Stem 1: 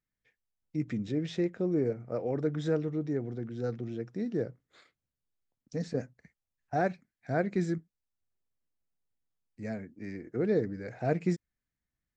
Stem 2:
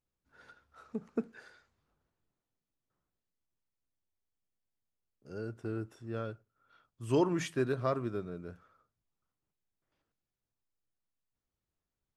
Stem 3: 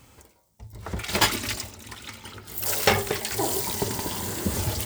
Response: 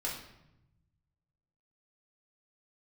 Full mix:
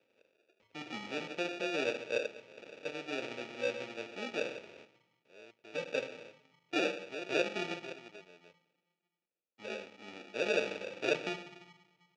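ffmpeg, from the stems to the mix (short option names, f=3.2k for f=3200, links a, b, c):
-filter_complex "[0:a]equalizer=f=760:w=1.5:g=3,volume=-4.5dB,asplit=3[a][b][c];[a]atrim=end=2.26,asetpts=PTS-STARTPTS,afade=t=out:st=2.256:d=0.004:c=hsin[d];[b]atrim=start=2.26:end=2.85,asetpts=PTS-STARTPTS,volume=0[e];[c]atrim=start=2.85,asetpts=PTS-STARTPTS,afade=t=in:d=0.004:c=hsin[f];[d][e][f]concat=n=3:v=0:a=1,asplit=2[g][h];[h]volume=-4.5dB[i];[1:a]volume=-11.5dB[j];[2:a]acompressor=threshold=-30dB:ratio=6,volume=-14dB[k];[3:a]atrim=start_sample=2205[l];[i][l]afir=irnorm=-1:irlink=0[m];[g][j][k][m]amix=inputs=4:normalize=0,acrusher=samples=42:mix=1:aa=0.000001,highpass=450,equalizer=f=500:t=q:w=4:g=4,equalizer=f=750:t=q:w=4:g=-7,equalizer=f=1.1k:t=q:w=4:g=-8,equalizer=f=1.6k:t=q:w=4:g=-6,equalizer=f=2.5k:t=q:w=4:g=8,equalizer=f=4.5k:t=q:w=4:g=-4,lowpass=f=5.3k:w=0.5412,lowpass=f=5.3k:w=1.3066"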